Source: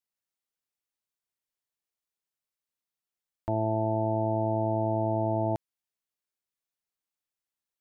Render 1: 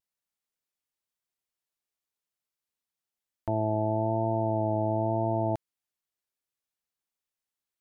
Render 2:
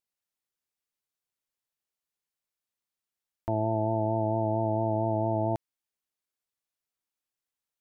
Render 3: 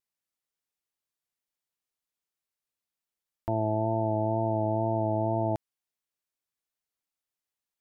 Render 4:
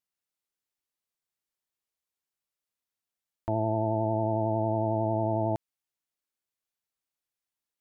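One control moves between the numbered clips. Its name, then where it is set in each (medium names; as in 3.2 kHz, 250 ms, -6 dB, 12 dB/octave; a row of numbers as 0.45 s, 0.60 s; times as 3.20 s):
vibrato, rate: 1 Hz, 4.4 Hz, 2.1 Hz, 11 Hz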